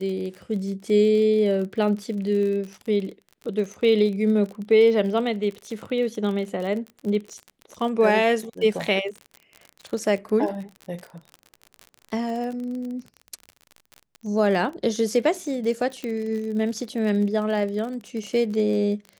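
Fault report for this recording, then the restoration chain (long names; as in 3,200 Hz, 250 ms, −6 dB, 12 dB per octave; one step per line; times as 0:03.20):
surface crackle 42 per second −31 dBFS
0:16.04: click −18 dBFS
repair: click removal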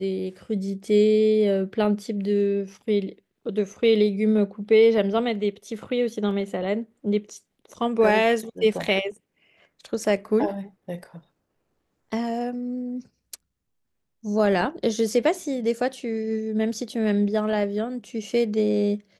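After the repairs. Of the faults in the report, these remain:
none of them is left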